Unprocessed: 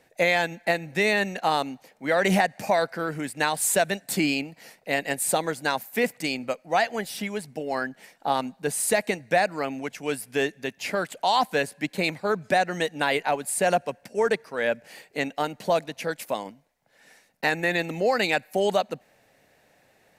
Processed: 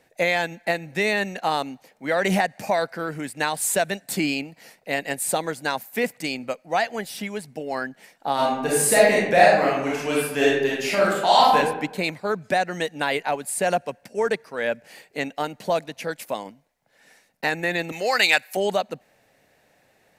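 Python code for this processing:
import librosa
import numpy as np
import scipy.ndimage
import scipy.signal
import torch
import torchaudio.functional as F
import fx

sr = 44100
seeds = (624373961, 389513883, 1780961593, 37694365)

y = fx.reverb_throw(x, sr, start_s=8.34, length_s=3.22, rt60_s=0.88, drr_db=-6.5)
y = fx.tilt_shelf(y, sr, db=-9.5, hz=670.0, at=(17.92, 18.57))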